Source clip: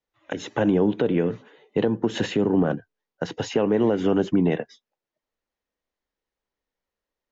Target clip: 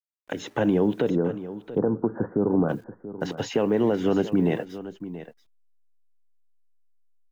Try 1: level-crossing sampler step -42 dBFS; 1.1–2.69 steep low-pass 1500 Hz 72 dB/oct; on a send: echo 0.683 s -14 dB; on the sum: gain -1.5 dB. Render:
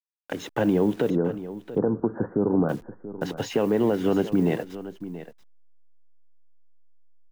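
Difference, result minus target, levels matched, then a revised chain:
level-crossing sampler: distortion +12 dB
level-crossing sampler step -53 dBFS; 1.1–2.69 steep low-pass 1500 Hz 72 dB/oct; on a send: echo 0.683 s -14 dB; on the sum: gain -1.5 dB

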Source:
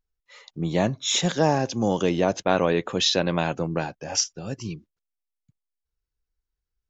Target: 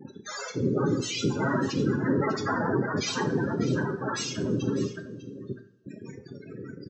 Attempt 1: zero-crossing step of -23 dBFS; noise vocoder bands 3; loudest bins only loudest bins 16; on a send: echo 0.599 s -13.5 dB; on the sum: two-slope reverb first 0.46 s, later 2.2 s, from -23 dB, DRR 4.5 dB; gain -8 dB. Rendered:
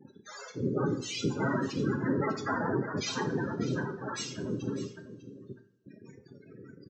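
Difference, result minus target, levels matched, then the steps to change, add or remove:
zero-crossing step: distortion -6 dB
change: zero-crossing step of -13.5 dBFS

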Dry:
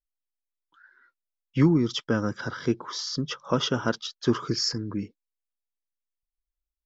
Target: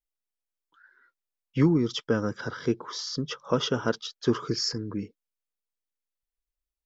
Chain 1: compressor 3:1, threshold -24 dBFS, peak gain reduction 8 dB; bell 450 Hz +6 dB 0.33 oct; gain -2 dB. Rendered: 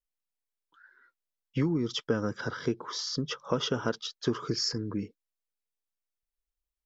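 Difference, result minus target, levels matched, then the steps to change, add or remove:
compressor: peak gain reduction +8 dB
remove: compressor 3:1, threshold -24 dBFS, peak gain reduction 8 dB

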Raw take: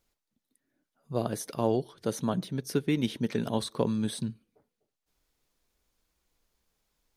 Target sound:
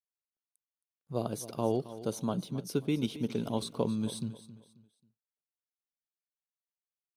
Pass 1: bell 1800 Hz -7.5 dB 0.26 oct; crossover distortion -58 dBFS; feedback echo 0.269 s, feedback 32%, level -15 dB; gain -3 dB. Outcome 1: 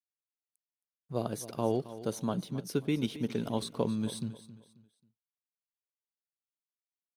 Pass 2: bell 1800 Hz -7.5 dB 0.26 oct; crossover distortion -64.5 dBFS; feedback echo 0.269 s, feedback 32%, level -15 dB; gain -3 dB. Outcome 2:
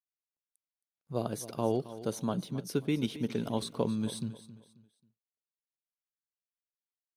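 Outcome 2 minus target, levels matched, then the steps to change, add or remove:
2000 Hz band +2.5 dB
change: bell 1800 Hz -18.5 dB 0.26 oct

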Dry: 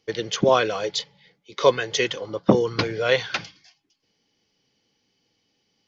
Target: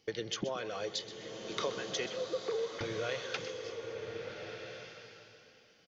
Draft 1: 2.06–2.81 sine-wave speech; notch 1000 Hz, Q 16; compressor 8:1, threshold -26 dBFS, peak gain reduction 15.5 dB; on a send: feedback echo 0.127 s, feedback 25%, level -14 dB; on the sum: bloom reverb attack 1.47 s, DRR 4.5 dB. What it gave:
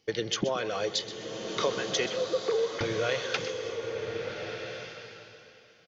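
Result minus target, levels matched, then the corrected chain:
compressor: peak gain reduction -7.5 dB
2.06–2.81 sine-wave speech; notch 1000 Hz, Q 16; compressor 8:1, threshold -34.5 dBFS, peak gain reduction 23 dB; on a send: feedback echo 0.127 s, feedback 25%, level -14 dB; on the sum: bloom reverb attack 1.47 s, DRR 4.5 dB

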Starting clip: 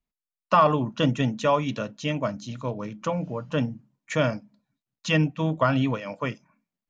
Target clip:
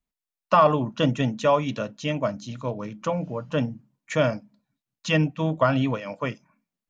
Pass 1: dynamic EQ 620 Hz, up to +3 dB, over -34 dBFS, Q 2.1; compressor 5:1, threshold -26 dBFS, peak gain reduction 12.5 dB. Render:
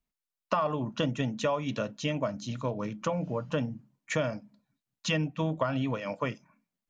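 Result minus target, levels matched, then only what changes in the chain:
compressor: peak gain reduction +12.5 dB
remove: compressor 5:1, threshold -26 dBFS, peak gain reduction 12.5 dB

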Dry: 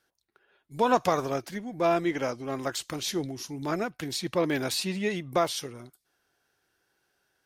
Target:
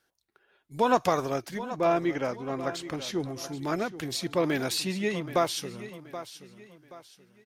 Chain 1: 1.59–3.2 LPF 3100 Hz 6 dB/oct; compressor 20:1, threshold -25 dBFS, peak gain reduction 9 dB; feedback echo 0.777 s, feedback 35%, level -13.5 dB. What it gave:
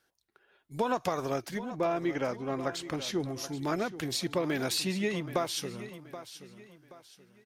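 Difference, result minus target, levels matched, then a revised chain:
compressor: peak gain reduction +9 dB
1.59–3.2 LPF 3100 Hz 6 dB/oct; feedback echo 0.777 s, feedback 35%, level -13.5 dB

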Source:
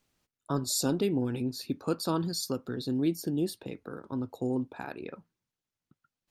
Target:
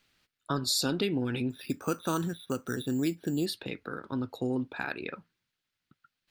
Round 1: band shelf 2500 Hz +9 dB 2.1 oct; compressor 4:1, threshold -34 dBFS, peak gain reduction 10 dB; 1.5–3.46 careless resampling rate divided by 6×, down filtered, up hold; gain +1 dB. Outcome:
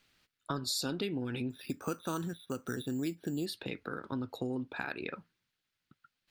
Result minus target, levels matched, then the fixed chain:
compressor: peak gain reduction +6 dB
band shelf 2500 Hz +9 dB 2.1 oct; compressor 4:1, threshold -26 dBFS, peak gain reduction 4 dB; 1.5–3.46 careless resampling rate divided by 6×, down filtered, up hold; gain +1 dB

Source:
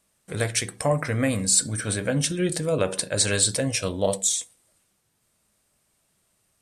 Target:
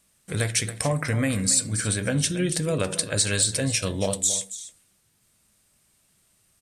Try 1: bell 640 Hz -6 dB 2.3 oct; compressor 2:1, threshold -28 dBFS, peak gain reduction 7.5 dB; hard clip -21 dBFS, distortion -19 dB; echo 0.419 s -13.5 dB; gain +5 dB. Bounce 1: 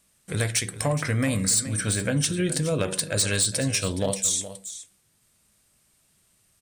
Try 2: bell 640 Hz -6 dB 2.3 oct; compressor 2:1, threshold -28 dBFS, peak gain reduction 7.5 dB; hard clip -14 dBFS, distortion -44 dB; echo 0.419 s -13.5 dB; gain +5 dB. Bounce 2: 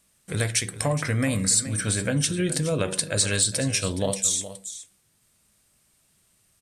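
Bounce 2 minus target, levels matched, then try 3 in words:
echo 0.142 s late
bell 640 Hz -6 dB 2.3 oct; compressor 2:1, threshold -28 dBFS, peak gain reduction 7.5 dB; hard clip -14 dBFS, distortion -44 dB; echo 0.277 s -13.5 dB; gain +5 dB

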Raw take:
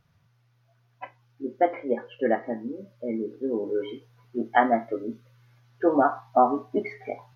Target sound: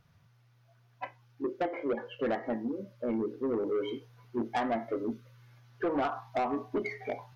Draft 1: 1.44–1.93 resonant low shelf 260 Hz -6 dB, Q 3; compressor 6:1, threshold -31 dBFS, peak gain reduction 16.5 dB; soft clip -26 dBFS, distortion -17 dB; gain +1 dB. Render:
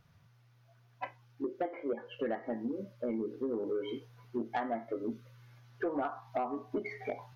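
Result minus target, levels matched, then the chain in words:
compressor: peak gain reduction +7 dB
1.44–1.93 resonant low shelf 260 Hz -6 dB, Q 3; compressor 6:1, threshold -22.5 dBFS, peak gain reduction 9.5 dB; soft clip -26 dBFS, distortion -10 dB; gain +1 dB

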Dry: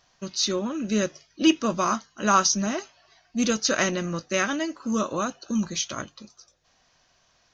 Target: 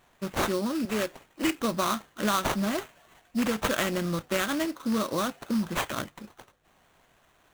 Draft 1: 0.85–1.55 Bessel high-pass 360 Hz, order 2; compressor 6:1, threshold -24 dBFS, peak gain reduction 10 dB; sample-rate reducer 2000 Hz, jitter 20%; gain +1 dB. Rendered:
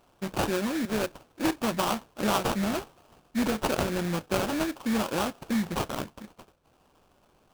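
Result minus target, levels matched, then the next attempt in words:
sample-rate reducer: distortion +5 dB
0.85–1.55 Bessel high-pass 360 Hz, order 2; compressor 6:1, threshold -24 dBFS, peak gain reduction 10 dB; sample-rate reducer 5000 Hz, jitter 20%; gain +1 dB

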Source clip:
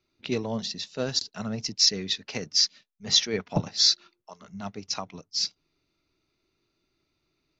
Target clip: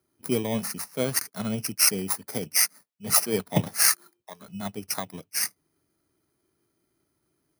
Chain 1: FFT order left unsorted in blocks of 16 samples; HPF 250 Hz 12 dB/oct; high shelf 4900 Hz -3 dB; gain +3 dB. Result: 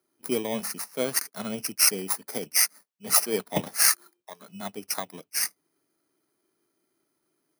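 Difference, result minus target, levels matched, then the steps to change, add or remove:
125 Hz band -9.0 dB
change: HPF 76 Hz 12 dB/oct

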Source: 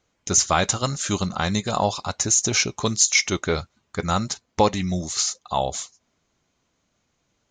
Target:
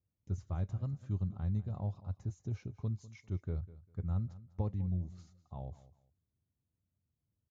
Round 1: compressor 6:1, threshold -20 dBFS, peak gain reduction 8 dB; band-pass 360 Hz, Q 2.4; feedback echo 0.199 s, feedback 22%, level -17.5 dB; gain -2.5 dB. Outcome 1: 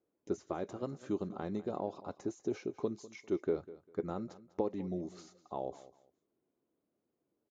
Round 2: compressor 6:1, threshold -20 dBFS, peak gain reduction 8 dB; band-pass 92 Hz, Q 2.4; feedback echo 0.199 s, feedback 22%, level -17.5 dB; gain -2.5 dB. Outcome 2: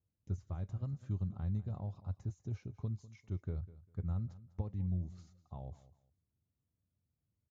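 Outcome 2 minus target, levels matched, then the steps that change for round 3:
compressor: peak gain reduction +8 dB
remove: compressor 6:1, threshold -20 dBFS, peak gain reduction 8 dB

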